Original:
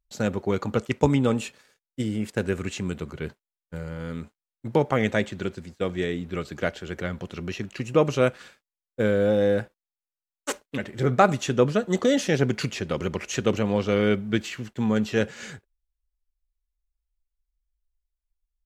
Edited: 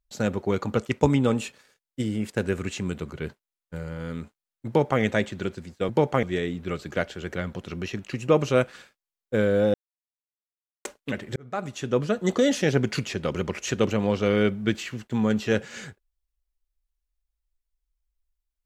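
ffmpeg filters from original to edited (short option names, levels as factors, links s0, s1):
-filter_complex "[0:a]asplit=6[s0][s1][s2][s3][s4][s5];[s0]atrim=end=5.892[s6];[s1]atrim=start=4.668:end=5.012[s7];[s2]atrim=start=5.888:end=9.4,asetpts=PTS-STARTPTS,afade=t=out:st=3.508:d=0.004:c=hsin[s8];[s3]atrim=start=9.4:end=10.51,asetpts=PTS-STARTPTS,volume=0[s9];[s4]atrim=start=10.51:end=11.02,asetpts=PTS-STARTPTS,afade=t=in:d=0.004:c=hsin,afade=t=out:st=0.506:d=0.004:c=hsin[s10];[s5]atrim=start=11.02,asetpts=PTS-STARTPTS,afade=t=in:d=0.91[s11];[s6][s7]acrossfade=d=0.004:c1=hsin:c2=hsin[s12];[s8][s9][s10][s11]concat=n=4:v=0:a=1[s13];[s12][s13]acrossfade=d=0.004:c1=hsin:c2=hsin"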